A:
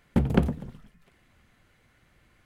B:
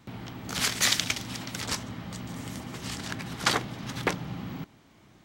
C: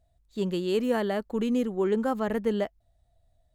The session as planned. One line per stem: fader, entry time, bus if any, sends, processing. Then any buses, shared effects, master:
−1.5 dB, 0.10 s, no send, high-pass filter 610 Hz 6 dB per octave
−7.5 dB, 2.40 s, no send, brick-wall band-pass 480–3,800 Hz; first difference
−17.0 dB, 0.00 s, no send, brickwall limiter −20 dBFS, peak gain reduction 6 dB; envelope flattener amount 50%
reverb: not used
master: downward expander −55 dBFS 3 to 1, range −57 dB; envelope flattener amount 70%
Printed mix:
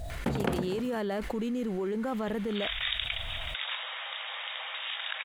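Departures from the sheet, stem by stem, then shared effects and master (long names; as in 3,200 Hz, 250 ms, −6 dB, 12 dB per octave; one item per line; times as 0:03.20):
stem B: entry 2.40 s → 2.00 s
master: missing downward expander −55 dBFS 3 to 1, range −57 dB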